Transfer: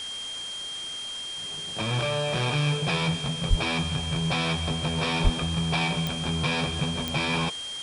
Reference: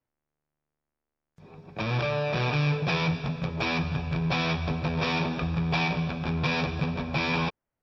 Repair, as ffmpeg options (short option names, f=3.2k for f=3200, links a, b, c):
-filter_complex "[0:a]adeclick=t=4,bandreject=f=3.2k:w=30,asplit=3[a][b][c];[a]afade=t=out:st=3.49:d=0.02[d];[b]highpass=f=140:w=0.5412,highpass=f=140:w=1.3066,afade=t=in:st=3.49:d=0.02,afade=t=out:st=3.61:d=0.02[e];[c]afade=t=in:st=3.61:d=0.02[f];[d][e][f]amix=inputs=3:normalize=0,asplit=3[g][h][i];[g]afade=t=out:st=5.23:d=0.02[j];[h]highpass=f=140:w=0.5412,highpass=f=140:w=1.3066,afade=t=in:st=5.23:d=0.02,afade=t=out:st=5.35:d=0.02[k];[i]afade=t=in:st=5.35:d=0.02[l];[j][k][l]amix=inputs=3:normalize=0,afwtdn=0.01"